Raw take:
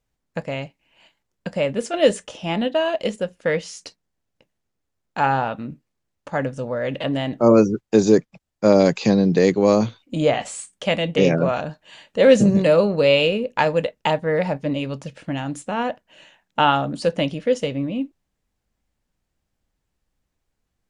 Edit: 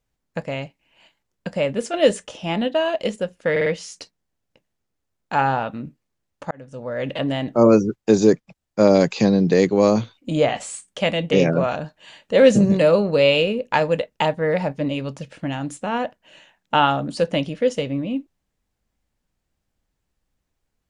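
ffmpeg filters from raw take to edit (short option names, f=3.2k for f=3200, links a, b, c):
-filter_complex "[0:a]asplit=5[a][b][c][d][e];[a]atrim=end=3.562[f];[b]atrim=start=3.508:end=3.562[g];[c]atrim=start=3.508:end=3.562[h];[d]atrim=start=3.508:end=6.36,asetpts=PTS-STARTPTS,afade=t=out:st=2.848:d=0.004:c=hsin[i];[e]atrim=start=6.36,asetpts=PTS-STARTPTS,afade=t=in:d=0.56[j];[f][g]acrossfade=d=0.004:c1=hsin:c2=hsin[k];[k][h]acrossfade=d=0.004:c1=hsin:c2=hsin[l];[i][j]concat=n=2:v=0:a=1[m];[l][m]acrossfade=d=0.004:c1=hsin:c2=hsin"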